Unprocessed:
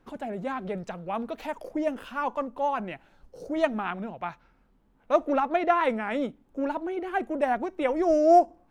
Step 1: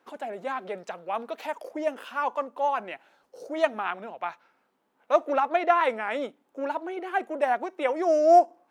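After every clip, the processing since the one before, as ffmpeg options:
-af "highpass=450,volume=1.26"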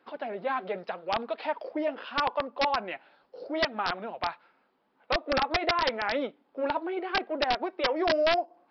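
-af "acompressor=threshold=0.0708:ratio=16,flanger=delay=0.4:depth=7:regen=-59:speed=0.81:shape=triangular,aresample=11025,aeval=exprs='(mod(15.8*val(0)+1,2)-1)/15.8':c=same,aresample=44100,volume=1.88"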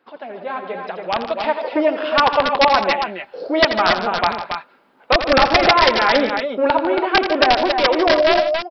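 -filter_complex "[0:a]dynaudnorm=f=500:g=5:m=3.55,asplit=2[s0][s1];[s1]aecho=0:1:84|149|167|277|282:0.299|0.224|0.1|0.422|0.282[s2];[s0][s2]amix=inputs=2:normalize=0,volume=1.26"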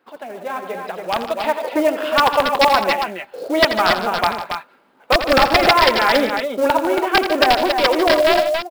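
-af "acrusher=bits=5:mode=log:mix=0:aa=0.000001"

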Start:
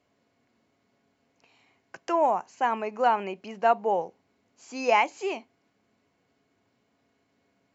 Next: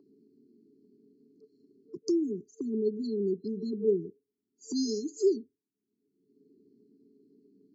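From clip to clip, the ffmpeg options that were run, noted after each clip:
-filter_complex "[0:a]afftdn=nr=32:nf=-48,afftfilt=real='re*(1-between(b*sr/4096,450,4100))':imag='im*(1-between(b*sr/4096,450,4100))':win_size=4096:overlap=0.75,acrossover=split=190|2300[s0][s1][s2];[s1]acompressor=mode=upward:threshold=0.0126:ratio=2.5[s3];[s0][s3][s2]amix=inputs=3:normalize=0,volume=2.11"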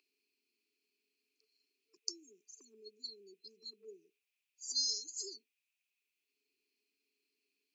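-af "highpass=f=2500:t=q:w=11,volume=1.5"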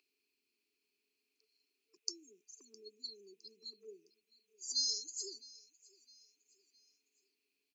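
-af "aecho=1:1:661|1322|1983:0.0794|0.0334|0.014"

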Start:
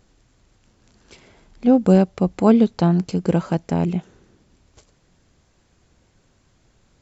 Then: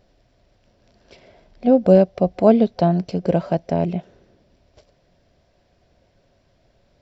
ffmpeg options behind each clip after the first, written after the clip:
-af "superequalizer=7b=1.41:8b=3.16:10b=0.708:15b=0.251,volume=0.794"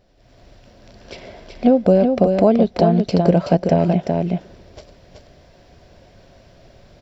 -af "acompressor=threshold=0.0891:ratio=4,aecho=1:1:377:0.562,dynaudnorm=f=160:g=3:m=3.76"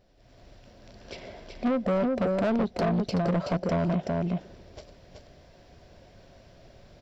-af "asoftclip=type=tanh:threshold=0.15,volume=0.562"

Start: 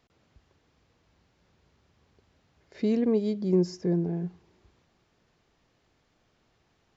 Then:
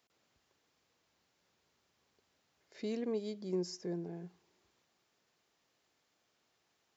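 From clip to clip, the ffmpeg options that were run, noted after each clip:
-af "highpass=f=420:p=1,highshelf=f=5900:g=12,volume=0.422"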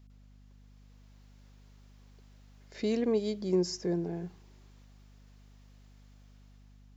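-af "dynaudnorm=f=240:g=7:m=2.24,aeval=exprs='val(0)+0.00158*(sin(2*PI*50*n/s)+sin(2*PI*2*50*n/s)/2+sin(2*PI*3*50*n/s)/3+sin(2*PI*4*50*n/s)/4+sin(2*PI*5*50*n/s)/5)':c=same,volume=1.12"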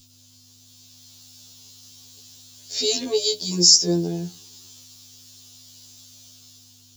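-af "aexciter=amount=14.8:drive=2.7:freq=3100,afftfilt=real='re*2*eq(mod(b,4),0)':imag='im*2*eq(mod(b,4),0)':win_size=2048:overlap=0.75,volume=2"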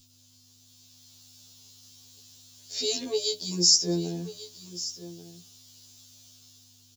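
-af "aecho=1:1:1139:0.178,volume=0.501"

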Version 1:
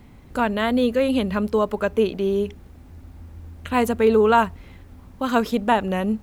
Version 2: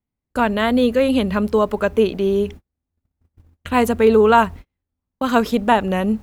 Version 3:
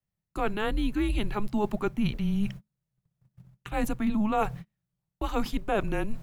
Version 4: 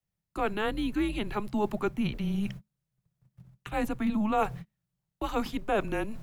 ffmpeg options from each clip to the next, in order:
-af "agate=range=0.00891:threshold=0.0178:ratio=16:detection=peak,volume=1.5"
-af "areverse,acompressor=threshold=0.0891:ratio=6,areverse,afreqshift=-210,volume=0.75"
-filter_complex "[0:a]acrossover=split=170|500|3600[s0][s1][s2][s3];[s0]asoftclip=type=tanh:threshold=0.0168[s4];[s3]alimiter=level_in=5.01:limit=0.0631:level=0:latency=1:release=88,volume=0.2[s5];[s4][s1][s2][s5]amix=inputs=4:normalize=0"

